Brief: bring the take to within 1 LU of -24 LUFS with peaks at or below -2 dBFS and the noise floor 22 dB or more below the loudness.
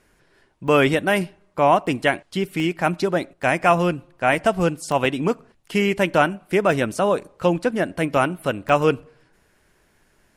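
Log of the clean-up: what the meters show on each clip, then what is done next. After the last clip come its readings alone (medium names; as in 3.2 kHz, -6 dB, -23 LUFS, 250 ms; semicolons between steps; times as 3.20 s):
dropouts 8; longest dropout 1.2 ms; loudness -21.0 LUFS; peak level -3.5 dBFS; loudness target -24.0 LUFS
-> interpolate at 0.68/1.87/2.60/3.43/4.92/6.14/6.73/8.69 s, 1.2 ms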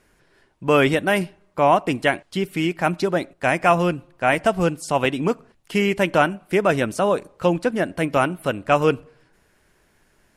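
dropouts 0; loudness -21.0 LUFS; peak level -3.5 dBFS; loudness target -24.0 LUFS
-> trim -3 dB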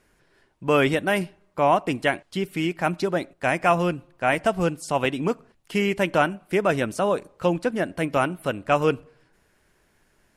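loudness -24.0 LUFS; peak level -6.5 dBFS; noise floor -65 dBFS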